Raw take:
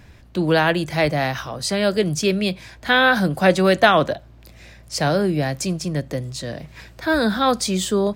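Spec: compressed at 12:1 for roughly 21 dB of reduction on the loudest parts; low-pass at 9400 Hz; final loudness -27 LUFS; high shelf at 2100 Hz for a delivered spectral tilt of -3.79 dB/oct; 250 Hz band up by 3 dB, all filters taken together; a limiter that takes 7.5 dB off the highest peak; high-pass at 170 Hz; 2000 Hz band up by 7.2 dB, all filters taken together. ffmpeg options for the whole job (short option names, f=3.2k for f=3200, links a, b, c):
-af "highpass=170,lowpass=9.4k,equalizer=f=250:t=o:g=6,equalizer=f=2k:t=o:g=8,highshelf=f=2.1k:g=3.5,acompressor=threshold=-26dB:ratio=12,volume=4.5dB,alimiter=limit=-16dB:level=0:latency=1"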